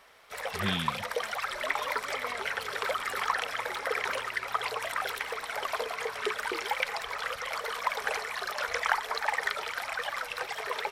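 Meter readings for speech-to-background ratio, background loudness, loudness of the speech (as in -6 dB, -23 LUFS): -2.5 dB, -32.0 LUFS, -34.5 LUFS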